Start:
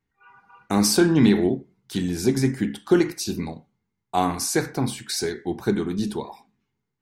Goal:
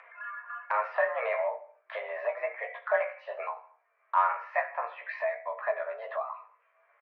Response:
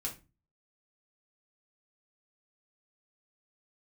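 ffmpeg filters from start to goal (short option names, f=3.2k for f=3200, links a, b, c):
-filter_complex "[0:a]flanger=delay=3.9:depth=5.6:regen=56:speed=0.37:shape=triangular,highpass=f=460:t=q:w=0.5412,highpass=f=460:t=q:w=1.307,lowpass=f=2k:t=q:w=0.5176,lowpass=f=2k:t=q:w=0.7071,lowpass=f=2k:t=q:w=1.932,afreqshift=230,acontrast=67,asplit=2[a][b];[b]adelay=17,volume=-4.5dB[c];[a][c]amix=inputs=2:normalize=0,aecho=1:1:72|144|216:0.1|0.042|0.0176,acompressor=mode=upward:threshold=-24dB:ratio=2.5,volume=-4.5dB"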